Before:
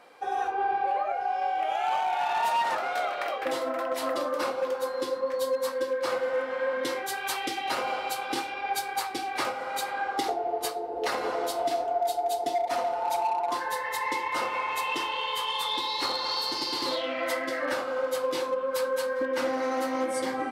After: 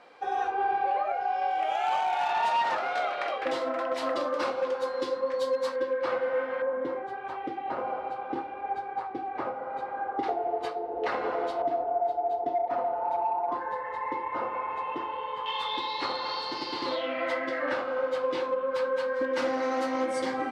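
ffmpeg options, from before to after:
ffmpeg -i in.wav -af "asetnsamples=nb_out_samples=441:pad=0,asendcmd='1.51 lowpass f 8900;2.31 lowpass f 5200;5.76 lowpass f 2600;6.62 lowpass f 1000;10.23 lowpass f 2400;11.62 lowpass f 1200;15.46 lowpass f 3100;19.14 lowpass f 6300',lowpass=5400" out.wav

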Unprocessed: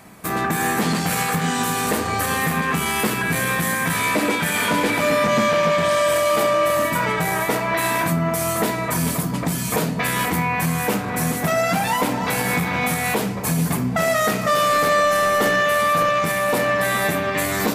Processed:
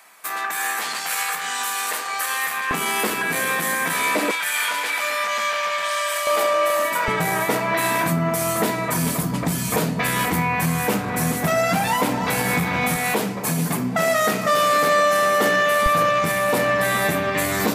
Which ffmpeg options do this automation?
ffmpeg -i in.wav -af "asetnsamples=nb_out_samples=441:pad=0,asendcmd='2.71 highpass f 300;4.31 highpass f 1100;6.27 highpass f 480;7.08 highpass f 110;9.21 highpass f 44;12.96 highpass f 160;15.86 highpass f 49',highpass=1000" out.wav

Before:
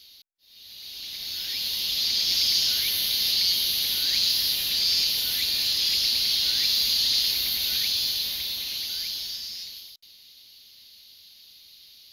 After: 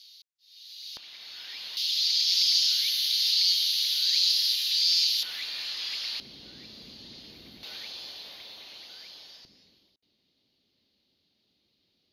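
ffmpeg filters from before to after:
ffmpeg -i in.wav -af "asetnsamples=nb_out_samples=441:pad=0,asendcmd='0.97 bandpass f 1200;1.77 bandpass f 4500;5.23 bandpass f 1300;6.2 bandpass f 240;7.63 bandpass f 710;9.45 bandpass f 270',bandpass=frequency=5000:width_type=q:width=0.99:csg=0" out.wav

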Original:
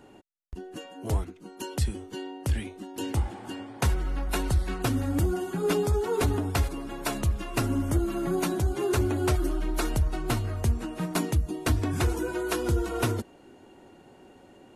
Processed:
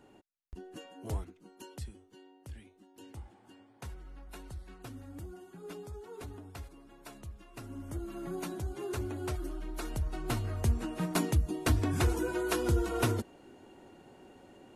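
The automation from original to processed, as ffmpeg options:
ffmpeg -i in.wav -af "volume=10dB,afade=type=out:start_time=0.92:duration=1.12:silence=0.237137,afade=type=in:start_time=7.6:duration=0.64:silence=0.375837,afade=type=in:start_time=9.81:duration=1.01:silence=0.375837" out.wav

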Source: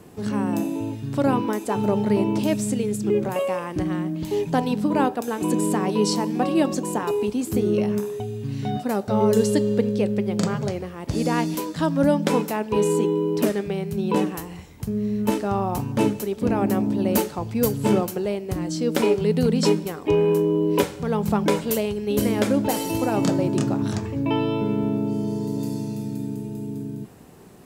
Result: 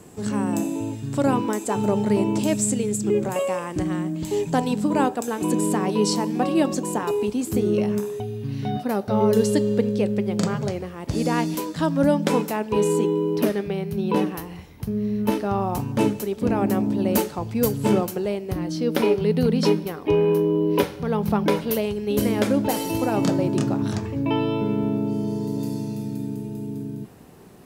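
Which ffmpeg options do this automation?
ffmpeg -i in.wav -af "asetnsamples=nb_out_samples=441:pad=0,asendcmd='5.27 equalizer g 2;8.2 equalizer g -9;9.44 equalizer g 0;13.36 equalizer g -10;15.6 equalizer g -1;18.51 equalizer g -12.5;21.83 equalizer g -3',equalizer=frequency=7600:width_type=o:width=0.43:gain=10.5" out.wav

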